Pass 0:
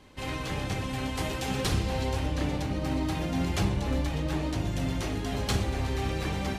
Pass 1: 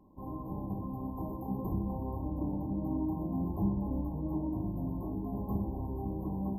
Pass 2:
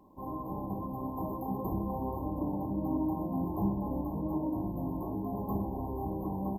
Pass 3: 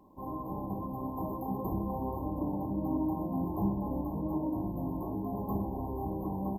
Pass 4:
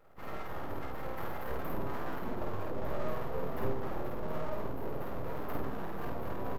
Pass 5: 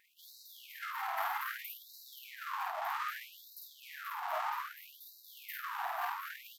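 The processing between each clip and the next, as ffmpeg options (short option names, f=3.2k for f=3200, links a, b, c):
-af "afftfilt=real='re*(1-between(b*sr/4096,1100,12000))':imag='im*(1-between(b*sr/4096,1100,12000))':win_size=4096:overlap=0.75,equalizer=f=200:t=o:w=0.33:g=10,equalizer=f=315:t=o:w=0.33:g=7,equalizer=f=500:t=o:w=0.33:g=-5,equalizer=f=1.25k:t=o:w=0.33:g=6,areverse,acompressor=mode=upward:threshold=-45dB:ratio=2.5,areverse,volume=-8dB"
-af "acontrast=83,lowshelf=f=310:g=-10.5,aecho=1:1:524:0.282"
-af anull
-filter_complex "[0:a]aeval=exprs='abs(val(0))':c=same,asplit=2[a][b];[b]adelay=50,volume=-2dB[c];[a][c]amix=inputs=2:normalize=0,volume=-2dB"
-af "afftfilt=real='re*gte(b*sr/1024,640*pow(3800/640,0.5+0.5*sin(2*PI*0.63*pts/sr)))':imag='im*gte(b*sr/1024,640*pow(3800/640,0.5+0.5*sin(2*PI*0.63*pts/sr)))':win_size=1024:overlap=0.75,volume=8.5dB"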